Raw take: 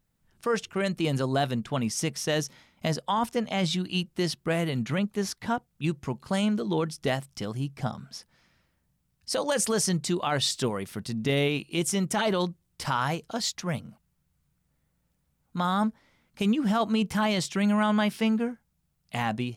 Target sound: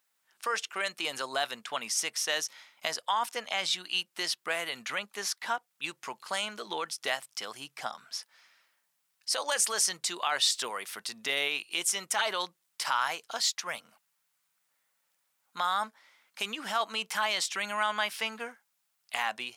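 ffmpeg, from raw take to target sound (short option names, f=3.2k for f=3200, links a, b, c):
-filter_complex "[0:a]highpass=1k,asplit=2[a][b];[b]acompressor=threshold=-39dB:ratio=6,volume=-1.5dB[c];[a][c]amix=inputs=2:normalize=0"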